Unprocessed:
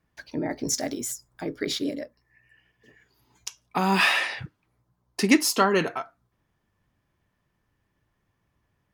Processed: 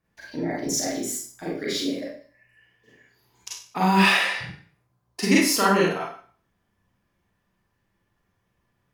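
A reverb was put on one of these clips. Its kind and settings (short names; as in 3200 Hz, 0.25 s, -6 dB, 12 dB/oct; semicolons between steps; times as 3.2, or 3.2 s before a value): Schroeder reverb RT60 0.46 s, combs from 32 ms, DRR -5.5 dB; gain -4.5 dB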